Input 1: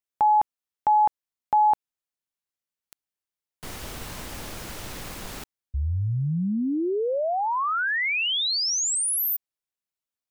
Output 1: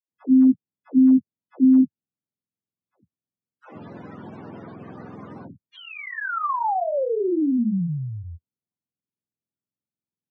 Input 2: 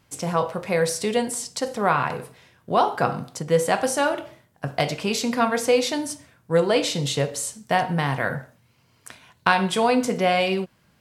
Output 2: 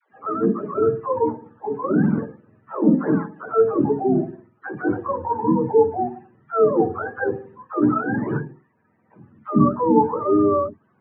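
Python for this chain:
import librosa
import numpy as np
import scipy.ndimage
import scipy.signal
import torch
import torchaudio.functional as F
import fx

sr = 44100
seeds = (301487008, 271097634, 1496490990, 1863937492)

y = fx.octave_mirror(x, sr, pivot_hz=470.0)
y = scipy.signal.sosfilt(scipy.signal.cheby1(2, 1.0, [220.0, 1300.0], 'bandpass', fs=sr, output='sos'), y)
y = fx.dispersion(y, sr, late='lows', ms=131.0, hz=400.0)
y = y * librosa.db_to_amplitude(5.0)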